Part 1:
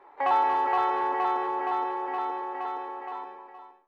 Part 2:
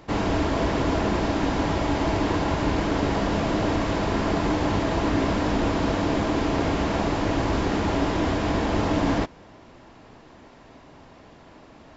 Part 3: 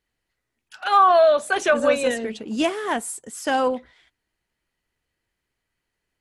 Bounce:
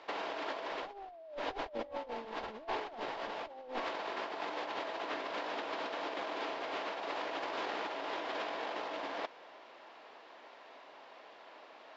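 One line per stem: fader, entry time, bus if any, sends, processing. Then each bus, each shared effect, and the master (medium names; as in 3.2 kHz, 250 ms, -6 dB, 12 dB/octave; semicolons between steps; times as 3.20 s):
-14.5 dB, 1.65 s, no bus, no send, peak limiter -22.5 dBFS, peak gain reduction 7.5 dB
-5.5 dB, 0.00 s, bus A, no send, Chebyshev band-pass 510–3800 Hz, order 2
-1.5 dB, 0.00 s, bus A, no send, comb filter that takes the minimum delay 1.4 ms; steep low-pass 800 Hz 48 dB/octave; peaking EQ 400 Hz +8.5 dB 0.73 oct
bus A: 0.0 dB, bass shelf 420 Hz -8.5 dB; compression 16:1, threshold -29 dBFS, peak gain reduction 14.5 dB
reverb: none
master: compressor with a negative ratio -39 dBFS, ratio -0.5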